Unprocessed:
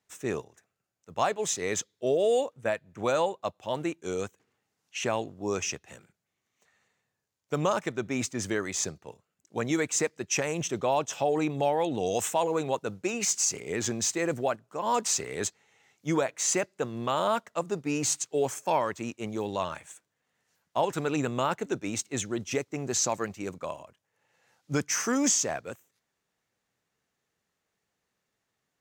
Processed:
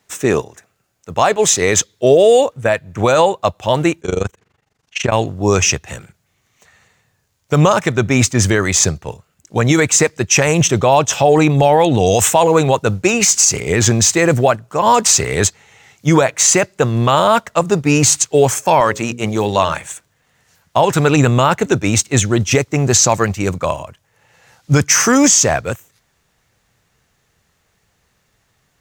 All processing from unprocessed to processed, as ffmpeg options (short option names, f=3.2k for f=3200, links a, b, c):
-filter_complex "[0:a]asettb=1/sr,asplit=3[a][b][c];[a]atrim=end=4.014[d];[b]atrim=start=4.01:end=5.12,asetpts=PTS-STARTPTS,afade=t=in:d=0.004:c=qsin,afade=t=out:st=1.106:d=0.004:c=qsin,lowpass=f=4k:p=1,tremolo=f=24:d=0.919[e];[c]atrim=start=5.116[f];[d][e]acrossfade=d=0.004:c1=hsin:c2=qsin[g];[g][f]acrossfade=d=0.004:c1=qsin:c2=hsin,asettb=1/sr,asplit=3[h][i][j];[h]atrim=end=18.804[k];[i]atrim=start=18.8:end=19.87,asetpts=PTS-STARTPTS,afade=t=in:d=0.004:c=qsin,afade=t=out:st=1.066:d=0.004:c=qsin,highpass=f=170:p=1,bandreject=f=60:t=h:w=6,bandreject=f=120:t=h:w=6,bandreject=f=180:t=h:w=6,bandreject=f=240:t=h:w=6,bandreject=f=300:t=h:w=6,bandreject=f=360:t=h:w=6,bandreject=f=420:t=h:w=6,bandreject=f=480:t=h:w=6,bandreject=f=540:t=h:w=6[l];[j]atrim=start=19.866[m];[k][l]acrossfade=d=0.004:c1=hsin:c2=qsin[n];[n][m]acrossfade=d=0.004:c1=qsin:c2=hsin,asubboost=boost=4:cutoff=120,alimiter=level_in=19dB:limit=-1dB:release=50:level=0:latency=1,volume=-1dB"